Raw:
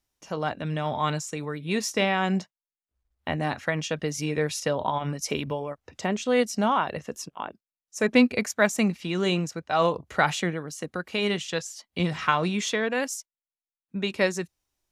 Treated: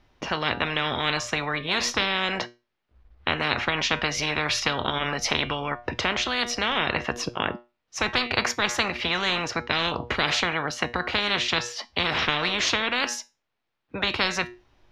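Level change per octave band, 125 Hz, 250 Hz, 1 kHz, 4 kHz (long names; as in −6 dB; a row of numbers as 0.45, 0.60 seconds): −4.0, −6.0, +0.5, +9.0 decibels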